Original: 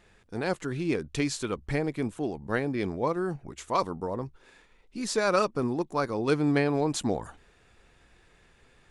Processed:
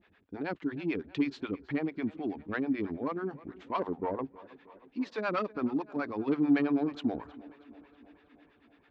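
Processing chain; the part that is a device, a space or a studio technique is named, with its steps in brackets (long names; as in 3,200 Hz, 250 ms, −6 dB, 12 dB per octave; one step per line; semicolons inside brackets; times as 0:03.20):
0:03.79–0:04.25: flat-topped bell 660 Hz +8.5 dB
guitar amplifier with harmonic tremolo (two-band tremolo in antiphase 9.2 Hz, depth 100%, crossover 490 Hz; soft clipping −22.5 dBFS, distortion −17 dB; loudspeaker in its box 77–3,600 Hz, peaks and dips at 130 Hz −10 dB, 280 Hz +9 dB, 510 Hz −4 dB)
tape delay 318 ms, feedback 69%, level −19 dB, low-pass 4,100 Hz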